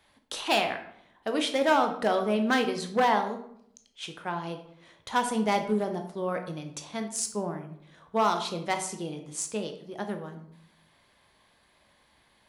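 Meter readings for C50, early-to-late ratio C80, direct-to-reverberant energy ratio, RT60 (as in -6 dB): 9.0 dB, 12.5 dB, 5.5 dB, 0.70 s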